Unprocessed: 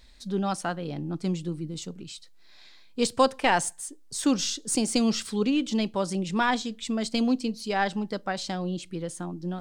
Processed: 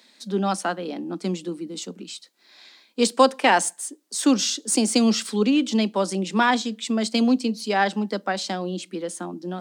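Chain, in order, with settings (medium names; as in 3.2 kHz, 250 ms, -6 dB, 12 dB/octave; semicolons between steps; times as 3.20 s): steep high-pass 190 Hz 72 dB/octave; trim +5 dB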